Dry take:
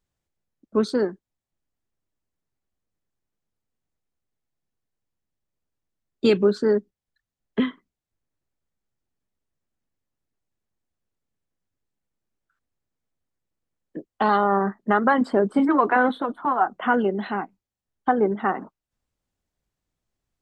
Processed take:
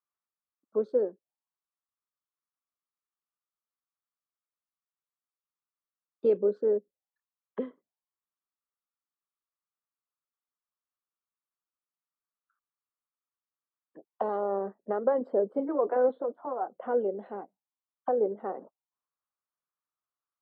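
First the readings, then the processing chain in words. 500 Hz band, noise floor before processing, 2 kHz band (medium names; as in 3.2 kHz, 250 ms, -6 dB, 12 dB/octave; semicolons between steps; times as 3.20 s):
-4.0 dB, under -85 dBFS, -22.5 dB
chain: bass shelf 340 Hz +5.5 dB; auto-wah 520–1200 Hz, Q 5.2, down, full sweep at -22.5 dBFS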